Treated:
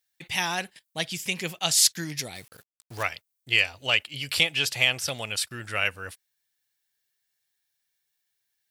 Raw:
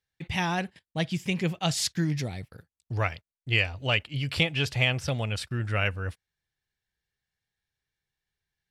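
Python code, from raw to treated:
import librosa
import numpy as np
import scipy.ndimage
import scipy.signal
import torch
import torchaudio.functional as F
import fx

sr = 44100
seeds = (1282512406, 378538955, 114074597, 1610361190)

y = fx.riaa(x, sr, side='recording')
y = fx.quant_companded(y, sr, bits=4, at=(2.35, 3.03))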